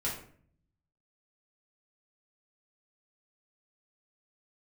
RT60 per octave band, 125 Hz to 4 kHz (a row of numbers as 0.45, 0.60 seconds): 1.1, 0.85, 0.55, 0.50, 0.45, 0.35 seconds